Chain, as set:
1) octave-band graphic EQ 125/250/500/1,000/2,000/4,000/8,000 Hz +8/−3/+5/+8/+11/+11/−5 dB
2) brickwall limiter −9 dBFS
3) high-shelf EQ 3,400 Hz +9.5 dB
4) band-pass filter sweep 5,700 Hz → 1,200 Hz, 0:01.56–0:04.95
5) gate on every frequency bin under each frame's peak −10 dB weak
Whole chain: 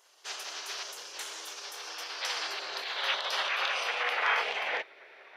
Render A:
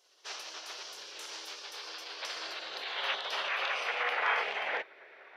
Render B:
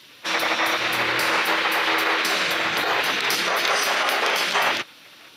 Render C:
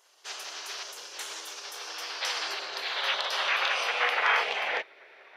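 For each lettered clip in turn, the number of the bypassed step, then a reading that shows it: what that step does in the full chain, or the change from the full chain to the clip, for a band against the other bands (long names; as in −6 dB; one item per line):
3, 8 kHz band −4.5 dB
4, 250 Hz band +14.0 dB
2, average gain reduction 1.5 dB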